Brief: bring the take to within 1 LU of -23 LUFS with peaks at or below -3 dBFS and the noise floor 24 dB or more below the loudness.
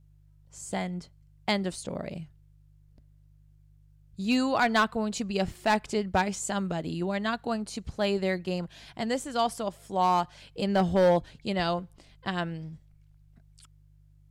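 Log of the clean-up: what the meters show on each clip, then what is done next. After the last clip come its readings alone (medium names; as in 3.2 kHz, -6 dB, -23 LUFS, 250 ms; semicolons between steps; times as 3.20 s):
clipped samples 0.5%; clipping level -16.5 dBFS; hum 50 Hz; highest harmonic 150 Hz; hum level -56 dBFS; loudness -29.0 LUFS; peak level -16.5 dBFS; loudness target -23.0 LUFS
-> clip repair -16.5 dBFS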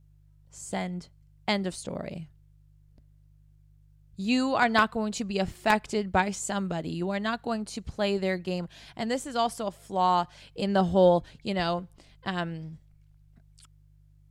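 clipped samples 0.0%; hum 50 Hz; highest harmonic 150 Hz; hum level -56 dBFS
-> de-hum 50 Hz, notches 3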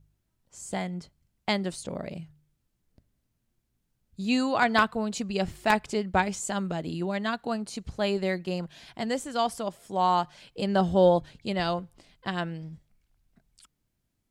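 hum not found; loudness -28.5 LUFS; peak level -7.5 dBFS; loudness target -23.0 LUFS
-> trim +5.5 dB; peak limiter -3 dBFS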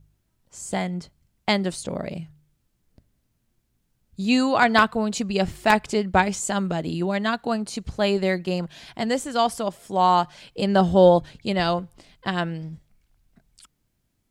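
loudness -23.0 LUFS; peak level -3.0 dBFS; noise floor -72 dBFS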